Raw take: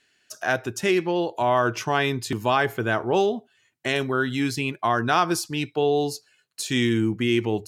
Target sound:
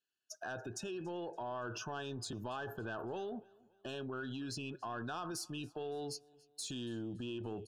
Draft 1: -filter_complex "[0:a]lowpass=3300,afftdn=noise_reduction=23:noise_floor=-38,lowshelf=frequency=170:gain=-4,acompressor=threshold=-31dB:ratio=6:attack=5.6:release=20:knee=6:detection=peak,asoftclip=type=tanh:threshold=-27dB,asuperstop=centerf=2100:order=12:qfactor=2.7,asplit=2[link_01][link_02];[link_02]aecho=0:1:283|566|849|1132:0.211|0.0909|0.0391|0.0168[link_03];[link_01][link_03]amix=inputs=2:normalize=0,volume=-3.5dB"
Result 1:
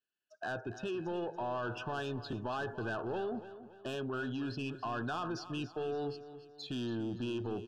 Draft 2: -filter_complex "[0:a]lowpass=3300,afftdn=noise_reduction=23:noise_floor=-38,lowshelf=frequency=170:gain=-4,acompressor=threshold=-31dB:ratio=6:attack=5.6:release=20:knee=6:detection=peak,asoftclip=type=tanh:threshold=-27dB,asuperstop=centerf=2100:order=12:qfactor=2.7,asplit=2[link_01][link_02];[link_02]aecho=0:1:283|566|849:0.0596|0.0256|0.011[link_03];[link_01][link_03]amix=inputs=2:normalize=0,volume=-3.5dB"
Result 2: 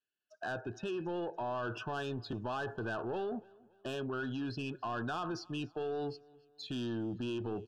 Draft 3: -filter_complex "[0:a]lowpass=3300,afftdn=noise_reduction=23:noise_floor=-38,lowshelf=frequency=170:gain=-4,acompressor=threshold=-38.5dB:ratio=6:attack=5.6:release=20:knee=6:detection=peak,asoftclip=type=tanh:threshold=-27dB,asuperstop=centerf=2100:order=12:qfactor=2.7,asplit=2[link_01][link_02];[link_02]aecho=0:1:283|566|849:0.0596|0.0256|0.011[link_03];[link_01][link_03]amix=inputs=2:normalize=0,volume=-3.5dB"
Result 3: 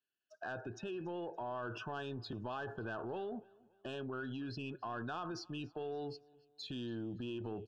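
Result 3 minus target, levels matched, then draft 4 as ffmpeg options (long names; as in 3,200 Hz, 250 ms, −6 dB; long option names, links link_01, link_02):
4,000 Hz band −3.0 dB
-filter_complex "[0:a]afftdn=noise_reduction=23:noise_floor=-38,lowshelf=frequency=170:gain=-4,acompressor=threshold=-38.5dB:ratio=6:attack=5.6:release=20:knee=6:detection=peak,asoftclip=type=tanh:threshold=-27dB,asuperstop=centerf=2100:order=12:qfactor=2.7,asplit=2[link_01][link_02];[link_02]aecho=0:1:283|566|849:0.0596|0.0256|0.011[link_03];[link_01][link_03]amix=inputs=2:normalize=0,volume=-3.5dB"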